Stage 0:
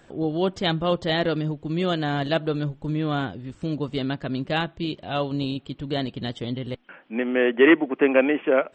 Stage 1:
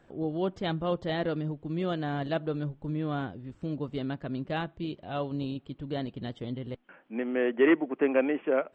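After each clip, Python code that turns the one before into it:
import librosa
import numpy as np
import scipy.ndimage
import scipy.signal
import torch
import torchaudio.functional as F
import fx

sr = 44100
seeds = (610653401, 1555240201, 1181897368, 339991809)

y = fx.high_shelf(x, sr, hz=2800.0, db=-11.0)
y = F.gain(torch.from_numpy(y), -6.0).numpy()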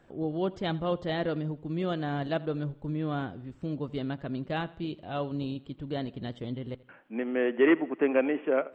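y = fx.echo_feedback(x, sr, ms=83, feedback_pct=46, wet_db=-21)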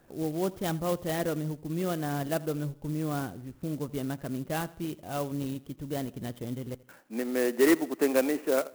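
y = fx.clock_jitter(x, sr, seeds[0], jitter_ms=0.053)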